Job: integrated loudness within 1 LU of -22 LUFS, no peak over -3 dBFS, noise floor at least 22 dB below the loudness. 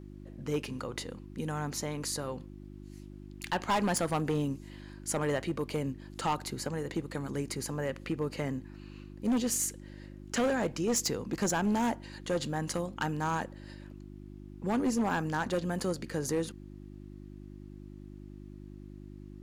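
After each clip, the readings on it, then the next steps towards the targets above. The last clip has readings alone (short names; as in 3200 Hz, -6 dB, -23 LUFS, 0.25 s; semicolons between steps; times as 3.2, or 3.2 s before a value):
clipped 1.2%; flat tops at -24.0 dBFS; hum 50 Hz; harmonics up to 350 Hz; hum level -46 dBFS; loudness -33.0 LUFS; peak -24.0 dBFS; loudness target -22.0 LUFS
-> clip repair -24 dBFS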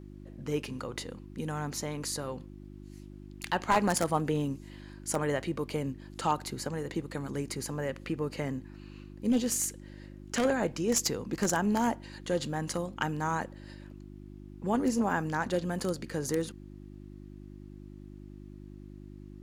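clipped 0.0%; hum 50 Hz; harmonics up to 350 Hz; hum level -45 dBFS
-> de-hum 50 Hz, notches 7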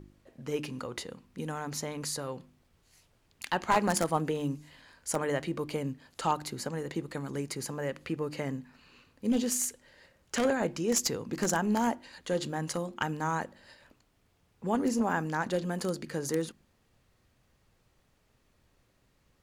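hum none; loudness -32.5 LUFS; peak -14.0 dBFS; loudness target -22.0 LUFS
-> gain +10.5 dB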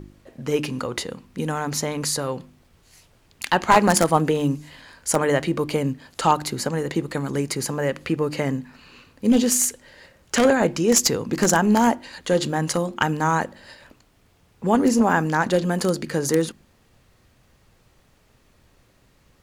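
loudness -22.0 LUFS; peak -3.5 dBFS; noise floor -59 dBFS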